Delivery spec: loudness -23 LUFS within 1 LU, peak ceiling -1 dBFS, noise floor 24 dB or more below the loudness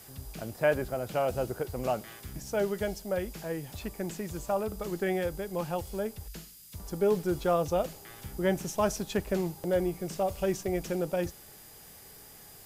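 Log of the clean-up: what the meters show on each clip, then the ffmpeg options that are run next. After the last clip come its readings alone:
steady tone 4.9 kHz; tone level -62 dBFS; noise floor -51 dBFS; noise floor target -56 dBFS; loudness -31.5 LUFS; peak level -14.0 dBFS; loudness target -23.0 LUFS
-> -af "bandreject=f=4900:w=30"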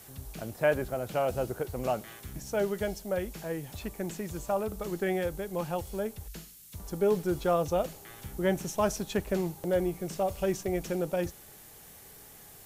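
steady tone not found; noise floor -52 dBFS; noise floor target -56 dBFS
-> -af "afftdn=nr=6:nf=-52"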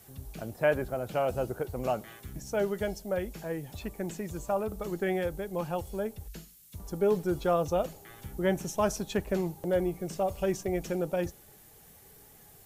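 noise floor -56 dBFS; loudness -32.0 LUFS; peak level -14.0 dBFS; loudness target -23.0 LUFS
-> -af "volume=2.82"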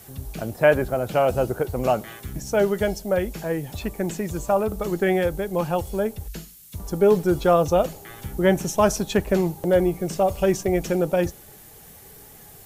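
loudness -23.0 LUFS; peak level -5.0 dBFS; noise floor -47 dBFS

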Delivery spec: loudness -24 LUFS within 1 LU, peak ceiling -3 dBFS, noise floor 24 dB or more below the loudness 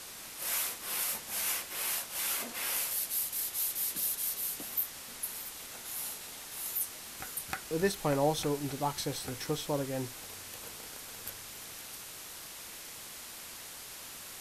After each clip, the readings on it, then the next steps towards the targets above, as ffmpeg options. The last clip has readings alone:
noise floor -46 dBFS; noise floor target -59 dBFS; loudness -34.5 LUFS; peak level -17.0 dBFS; loudness target -24.0 LUFS
-> -af "afftdn=nr=13:nf=-46"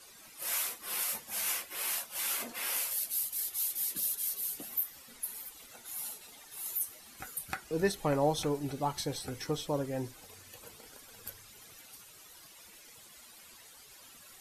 noise floor -55 dBFS; noise floor target -58 dBFS
-> -af "afftdn=nr=6:nf=-55"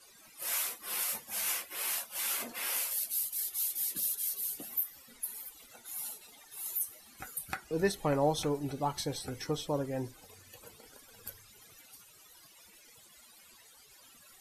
noise floor -59 dBFS; loudness -33.5 LUFS; peak level -17.5 dBFS; loudness target -24.0 LUFS
-> -af "volume=2.99"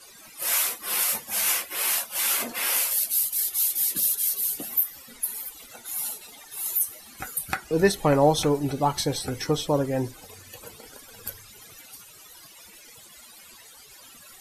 loudness -24.0 LUFS; peak level -8.0 dBFS; noise floor -49 dBFS

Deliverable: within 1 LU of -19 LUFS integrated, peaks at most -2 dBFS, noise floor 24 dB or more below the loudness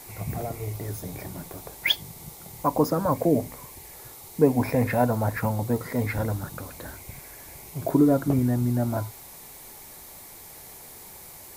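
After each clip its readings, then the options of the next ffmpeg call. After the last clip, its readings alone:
noise floor -45 dBFS; noise floor target -50 dBFS; loudness -25.5 LUFS; peak level -6.5 dBFS; loudness target -19.0 LUFS
-> -af "afftdn=nr=6:nf=-45"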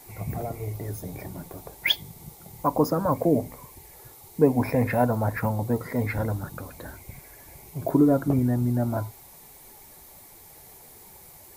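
noise floor -49 dBFS; noise floor target -50 dBFS
-> -af "afftdn=nr=6:nf=-49"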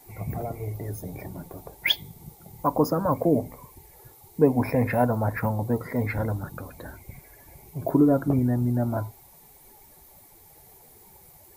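noise floor -53 dBFS; loudness -25.5 LUFS; peak level -6.5 dBFS; loudness target -19.0 LUFS
-> -af "volume=2.11,alimiter=limit=0.794:level=0:latency=1"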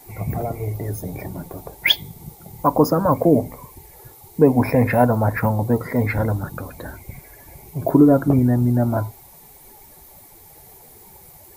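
loudness -19.0 LUFS; peak level -2.0 dBFS; noise floor -46 dBFS

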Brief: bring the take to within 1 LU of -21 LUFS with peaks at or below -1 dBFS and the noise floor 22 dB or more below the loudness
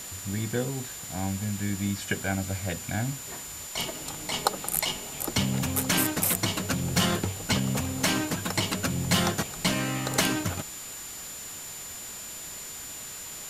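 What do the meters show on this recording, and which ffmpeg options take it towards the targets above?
steady tone 7.1 kHz; tone level -40 dBFS; noise floor -40 dBFS; noise floor target -51 dBFS; loudness -29.0 LUFS; peak level -6.0 dBFS; loudness target -21.0 LUFS
-> -af "bandreject=f=7100:w=30"
-af "afftdn=nr=11:nf=-40"
-af "volume=2.51,alimiter=limit=0.891:level=0:latency=1"

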